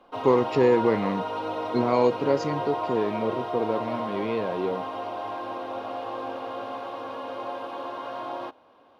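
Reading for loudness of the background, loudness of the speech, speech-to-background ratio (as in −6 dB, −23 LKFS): −32.5 LKFS, −26.0 LKFS, 6.5 dB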